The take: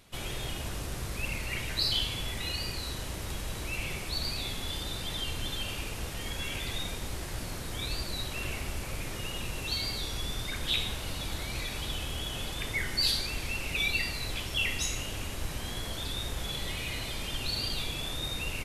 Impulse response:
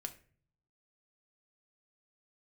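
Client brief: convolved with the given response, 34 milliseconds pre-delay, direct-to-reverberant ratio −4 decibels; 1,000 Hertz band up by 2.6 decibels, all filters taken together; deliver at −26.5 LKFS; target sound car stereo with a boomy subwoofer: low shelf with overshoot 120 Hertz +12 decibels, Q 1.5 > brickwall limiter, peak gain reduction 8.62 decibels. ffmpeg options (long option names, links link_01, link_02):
-filter_complex "[0:a]equalizer=frequency=1000:width_type=o:gain=3.5,asplit=2[link_01][link_02];[1:a]atrim=start_sample=2205,adelay=34[link_03];[link_02][link_03]afir=irnorm=-1:irlink=0,volume=6.5dB[link_04];[link_01][link_04]amix=inputs=2:normalize=0,lowshelf=frequency=120:width_type=q:width=1.5:gain=12,volume=-0.5dB,alimiter=limit=-14dB:level=0:latency=1"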